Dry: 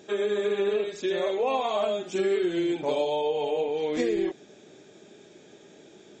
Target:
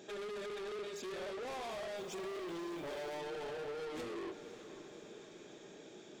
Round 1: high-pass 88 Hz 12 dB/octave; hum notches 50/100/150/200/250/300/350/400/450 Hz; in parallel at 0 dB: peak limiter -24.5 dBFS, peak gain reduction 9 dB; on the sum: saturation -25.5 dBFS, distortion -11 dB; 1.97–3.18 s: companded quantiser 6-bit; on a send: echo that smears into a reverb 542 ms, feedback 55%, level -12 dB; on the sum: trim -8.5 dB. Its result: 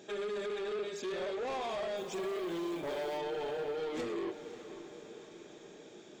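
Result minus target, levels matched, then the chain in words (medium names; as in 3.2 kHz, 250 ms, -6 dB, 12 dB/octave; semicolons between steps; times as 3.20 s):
saturation: distortion -5 dB
high-pass 88 Hz 12 dB/octave; hum notches 50/100/150/200/250/300/350/400/450 Hz; in parallel at 0 dB: peak limiter -24.5 dBFS, peak gain reduction 9 dB; on the sum: saturation -33 dBFS, distortion -6 dB; 1.97–3.18 s: companded quantiser 6-bit; on a send: echo that smears into a reverb 542 ms, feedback 55%, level -12 dB; on the sum: trim -8.5 dB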